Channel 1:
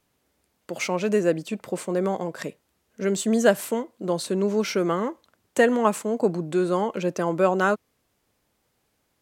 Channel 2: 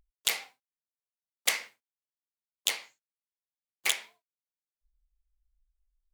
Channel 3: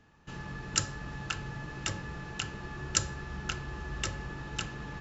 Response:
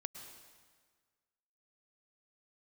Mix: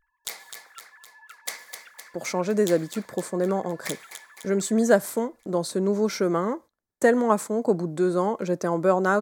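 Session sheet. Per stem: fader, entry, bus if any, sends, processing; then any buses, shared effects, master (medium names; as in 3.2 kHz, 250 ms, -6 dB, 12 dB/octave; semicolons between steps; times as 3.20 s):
0.0 dB, 1.45 s, no send, no echo send, gate -42 dBFS, range -21 dB
-6.5 dB, 0.00 s, send -6.5 dB, echo send -5 dB, none
-12.5 dB, 0.00 s, no send, echo send -19 dB, formants replaced by sine waves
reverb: on, RT60 1.6 s, pre-delay 98 ms
echo: feedback delay 256 ms, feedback 57%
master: peaking EQ 2.8 kHz -14 dB 0.45 oct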